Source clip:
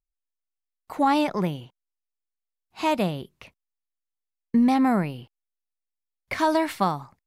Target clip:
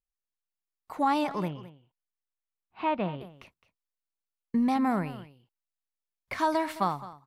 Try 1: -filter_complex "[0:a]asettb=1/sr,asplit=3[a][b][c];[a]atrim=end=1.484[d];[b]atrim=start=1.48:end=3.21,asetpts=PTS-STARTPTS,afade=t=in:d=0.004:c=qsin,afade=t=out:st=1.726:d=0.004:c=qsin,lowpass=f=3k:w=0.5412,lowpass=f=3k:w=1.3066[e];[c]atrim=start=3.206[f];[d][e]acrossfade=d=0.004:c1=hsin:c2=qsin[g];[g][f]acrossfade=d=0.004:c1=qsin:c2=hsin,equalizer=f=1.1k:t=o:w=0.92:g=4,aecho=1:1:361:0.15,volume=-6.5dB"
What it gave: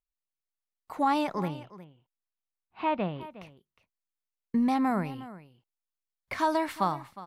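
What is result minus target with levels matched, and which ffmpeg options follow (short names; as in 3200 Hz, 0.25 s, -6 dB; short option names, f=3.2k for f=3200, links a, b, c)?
echo 0.148 s late
-filter_complex "[0:a]asettb=1/sr,asplit=3[a][b][c];[a]atrim=end=1.484[d];[b]atrim=start=1.48:end=3.21,asetpts=PTS-STARTPTS,afade=t=in:d=0.004:c=qsin,afade=t=out:st=1.726:d=0.004:c=qsin,lowpass=f=3k:w=0.5412,lowpass=f=3k:w=1.3066[e];[c]atrim=start=3.206[f];[d][e]acrossfade=d=0.004:c1=hsin:c2=qsin[g];[g][f]acrossfade=d=0.004:c1=qsin:c2=hsin,equalizer=f=1.1k:t=o:w=0.92:g=4,aecho=1:1:213:0.15,volume=-6.5dB"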